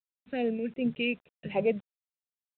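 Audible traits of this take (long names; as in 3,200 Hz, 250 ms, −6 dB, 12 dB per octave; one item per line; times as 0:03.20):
phaser sweep stages 2, 2.6 Hz, lowest notch 800–2,000 Hz
a quantiser's noise floor 10 bits, dither none
sample-and-hold tremolo
mu-law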